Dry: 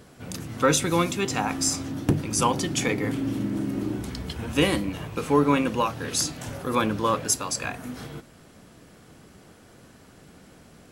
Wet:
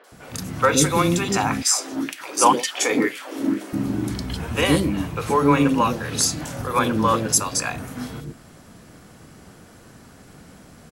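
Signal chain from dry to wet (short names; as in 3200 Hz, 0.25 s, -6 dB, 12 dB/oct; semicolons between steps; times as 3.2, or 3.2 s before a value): 1.5–3.61 LFO high-pass sine 2 Hz 280–2500 Hz; three bands offset in time mids, highs, lows 40/120 ms, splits 430/3000 Hz; gain +5.5 dB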